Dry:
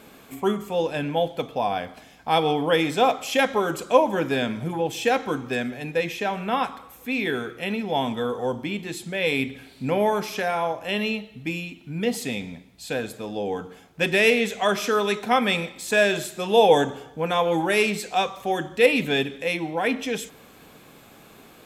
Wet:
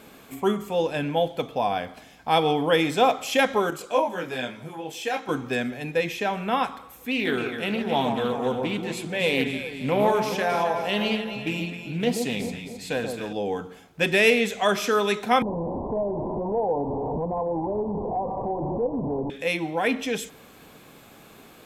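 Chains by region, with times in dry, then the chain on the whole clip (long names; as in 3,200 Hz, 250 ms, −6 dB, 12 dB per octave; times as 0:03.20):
0:03.70–0:05.29: low-shelf EQ 230 Hz −10 dB + micro pitch shift up and down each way 11 cents
0:07.11–0:13.33: delay that swaps between a low-pass and a high-pass 133 ms, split 1,200 Hz, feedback 68%, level −5 dB + highs frequency-modulated by the lows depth 0.17 ms
0:15.42–0:19.30: linear delta modulator 16 kbit/s, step −19.5 dBFS + Butterworth low-pass 1,000 Hz 96 dB per octave + downward compressor 2.5 to 1, threshold −25 dBFS
whole clip: no processing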